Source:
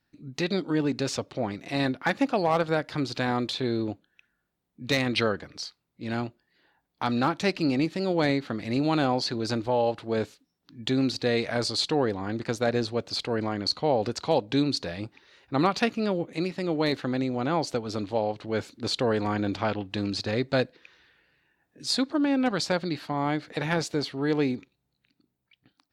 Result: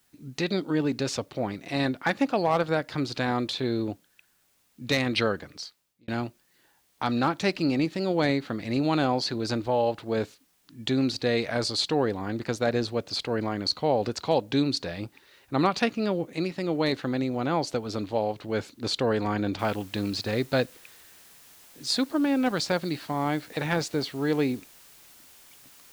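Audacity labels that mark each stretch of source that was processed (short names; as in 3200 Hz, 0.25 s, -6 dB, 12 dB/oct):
5.480000	6.080000	fade out
19.590000	19.590000	noise floor step -68 dB -53 dB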